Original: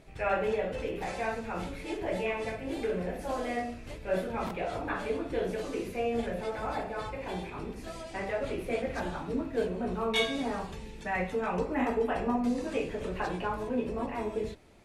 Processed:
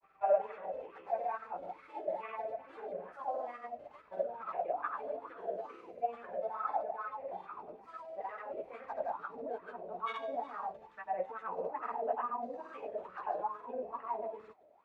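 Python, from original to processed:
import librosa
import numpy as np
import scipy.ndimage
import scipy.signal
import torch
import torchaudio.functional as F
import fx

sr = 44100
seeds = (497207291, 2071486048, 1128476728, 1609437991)

y = fx.granulator(x, sr, seeds[0], grain_ms=100.0, per_s=20.0, spray_ms=100.0, spread_st=0)
y = fx.wah_lfo(y, sr, hz=2.3, low_hz=600.0, high_hz=1300.0, q=8.3)
y = y * librosa.db_to_amplitude(7.5)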